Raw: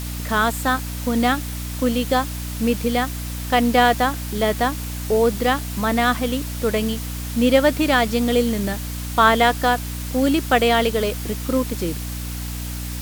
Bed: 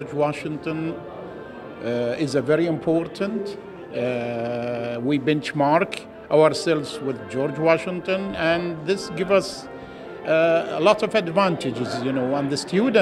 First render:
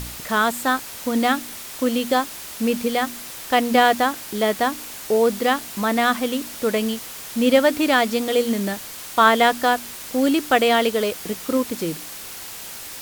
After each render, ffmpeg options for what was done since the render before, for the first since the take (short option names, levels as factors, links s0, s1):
-af "bandreject=f=60:t=h:w=4,bandreject=f=120:t=h:w=4,bandreject=f=180:t=h:w=4,bandreject=f=240:t=h:w=4,bandreject=f=300:t=h:w=4"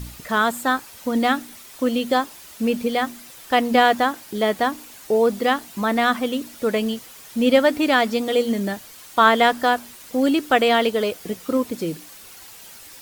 -af "afftdn=nr=9:nf=-36"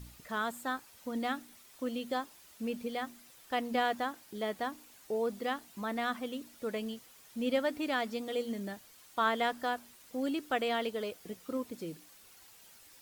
-af "volume=0.178"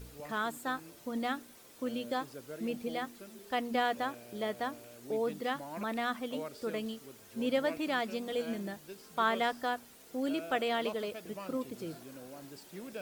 -filter_complex "[1:a]volume=0.0501[s0];[0:a][s0]amix=inputs=2:normalize=0"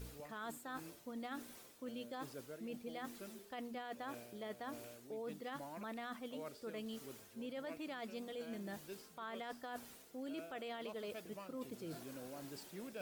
-af "alimiter=level_in=1.33:limit=0.0631:level=0:latency=1:release=18,volume=0.75,areverse,acompressor=threshold=0.00562:ratio=4,areverse"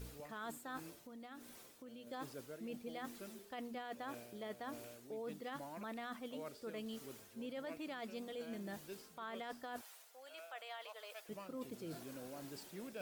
-filter_complex "[0:a]asettb=1/sr,asplit=3[s0][s1][s2];[s0]atrim=end=0.964[s3];[s1]atrim=start=0.96:end=2.07,asetpts=PTS-STARTPTS,afade=t=in:d=0.004:c=qsin,afade=t=out:st=1.106:d=0.004:c=qsin,acompressor=threshold=0.00251:ratio=3:attack=3.2:release=140:knee=1:detection=peak[s4];[s2]atrim=start=2.066[s5];[s3][s4]acrossfade=d=0.004:c1=hsin:c2=qsin[s6];[s6][s5]acrossfade=d=0.004:c1=qsin:c2=hsin,asettb=1/sr,asplit=3[s7][s8][s9];[s7]atrim=end=9.814[s10];[s8]atrim=start=9.81:end=11.29,asetpts=PTS-STARTPTS,afade=t=in:d=0.004:c=qsin,afade=t=out:st=1.476:d=0.004:c=qsin,highpass=f=650:w=0.5412,highpass=f=650:w=1.3066[s11];[s9]atrim=start=11.286[s12];[s10][s11]acrossfade=d=0.004:c1=hsin:c2=qsin[s13];[s13][s12]acrossfade=d=0.004:c1=qsin:c2=hsin"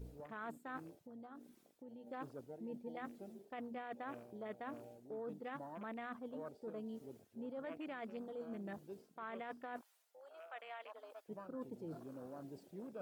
-af "afwtdn=0.00251"